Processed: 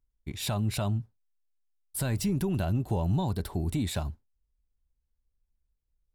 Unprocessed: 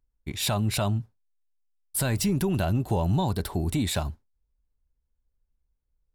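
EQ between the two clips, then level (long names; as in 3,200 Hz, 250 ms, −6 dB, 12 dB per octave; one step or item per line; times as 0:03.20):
low-shelf EQ 380 Hz +4.5 dB
−6.5 dB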